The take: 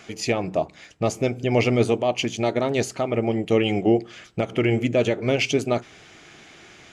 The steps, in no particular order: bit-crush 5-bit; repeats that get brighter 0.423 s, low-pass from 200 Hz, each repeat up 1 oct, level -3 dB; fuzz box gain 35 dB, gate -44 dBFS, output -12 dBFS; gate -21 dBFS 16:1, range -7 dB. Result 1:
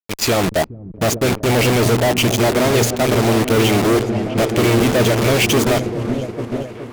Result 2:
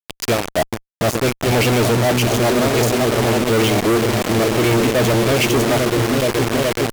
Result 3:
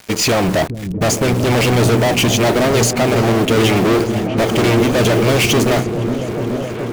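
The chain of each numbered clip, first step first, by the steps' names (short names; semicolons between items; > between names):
bit-crush > fuzz box > repeats that get brighter > gate; gate > repeats that get brighter > bit-crush > fuzz box; fuzz box > bit-crush > gate > repeats that get brighter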